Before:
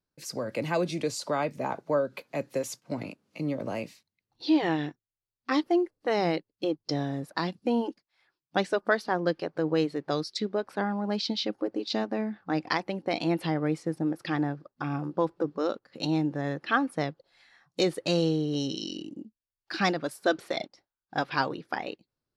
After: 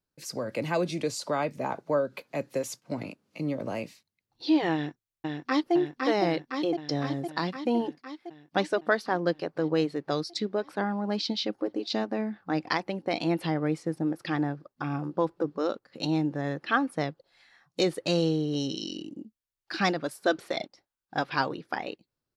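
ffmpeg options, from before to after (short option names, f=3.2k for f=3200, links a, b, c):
-filter_complex "[0:a]asplit=2[a][b];[b]afade=t=in:st=4.73:d=0.01,afade=t=out:st=5.74:d=0.01,aecho=0:1:510|1020|1530|2040|2550|3060|3570|4080|4590|5100|5610|6120:0.707946|0.495562|0.346893|0.242825|0.169978|0.118984|0.0832891|0.0583024|0.0408117|0.0285682|0.0199977|0.0139984[c];[a][c]amix=inputs=2:normalize=0"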